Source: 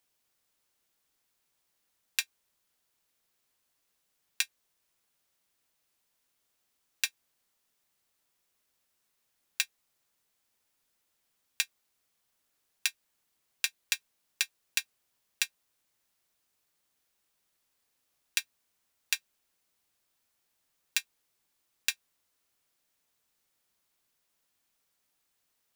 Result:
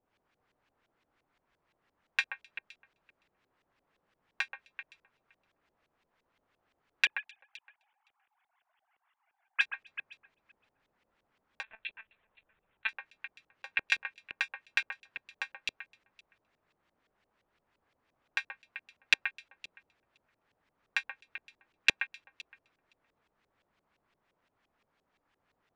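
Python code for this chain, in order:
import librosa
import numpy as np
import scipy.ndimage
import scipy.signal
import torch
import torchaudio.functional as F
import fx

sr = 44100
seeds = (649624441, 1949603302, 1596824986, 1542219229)

y = fx.sine_speech(x, sr, at=(7.05, 9.61))
y = fx.echo_alternate(y, sr, ms=129, hz=2500.0, feedback_pct=51, wet_db=-3.0)
y = fx.filter_lfo_lowpass(y, sr, shape='saw_up', hz=5.8, low_hz=490.0, high_hz=3000.0, q=1.1)
y = fx.lpc_monotone(y, sr, seeds[0], pitch_hz=220.0, order=16, at=(11.63, 12.89))
y = y * librosa.db_to_amplitude(7.5)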